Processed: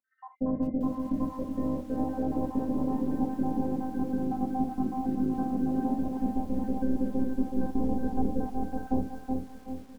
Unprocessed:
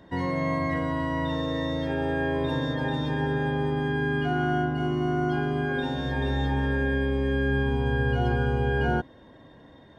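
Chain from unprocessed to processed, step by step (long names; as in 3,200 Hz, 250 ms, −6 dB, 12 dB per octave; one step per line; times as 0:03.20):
time-frequency cells dropped at random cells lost 57%
low-pass filter 1,000 Hz 24 dB per octave
parametric band 200 Hz +15 dB 0.61 octaves
phases set to zero 259 Hz
repeating echo 373 ms, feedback 31%, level −6 dB
convolution reverb, pre-delay 3 ms, DRR 3.5 dB
feedback echo at a low word length 396 ms, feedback 55%, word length 8 bits, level −12.5 dB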